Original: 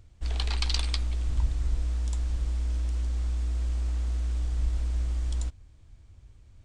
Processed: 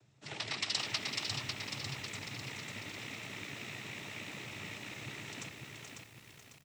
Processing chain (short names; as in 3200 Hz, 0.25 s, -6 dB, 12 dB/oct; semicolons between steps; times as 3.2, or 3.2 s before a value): rattling part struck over -26 dBFS, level -28 dBFS; on a send: echo 0.428 s -6.5 dB; on the sum: noise vocoder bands 12; lo-fi delay 0.548 s, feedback 55%, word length 9-bit, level -4 dB; gain -2.5 dB